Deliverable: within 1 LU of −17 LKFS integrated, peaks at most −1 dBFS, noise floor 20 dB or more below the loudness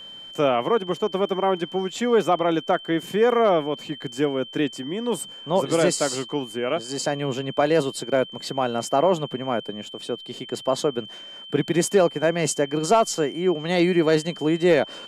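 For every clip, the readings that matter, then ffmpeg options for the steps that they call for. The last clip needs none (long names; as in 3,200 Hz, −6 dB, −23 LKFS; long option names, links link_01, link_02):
interfering tone 3,100 Hz; level of the tone −38 dBFS; integrated loudness −23.0 LKFS; sample peak −8.5 dBFS; target loudness −17.0 LKFS
→ -af "bandreject=frequency=3100:width=30"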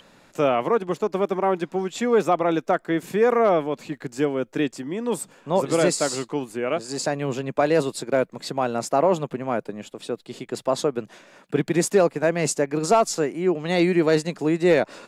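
interfering tone none found; integrated loudness −23.0 LKFS; sample peak −8.5 dBFS; target loudness −17.0 LKFS
→ -af "volume=6dB"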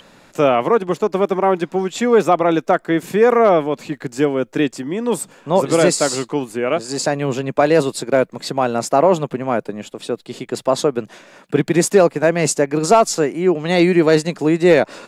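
integrated loudness −17.0 LKFS; sample peak −2.5 dBFS; background noise floor −49 dBFS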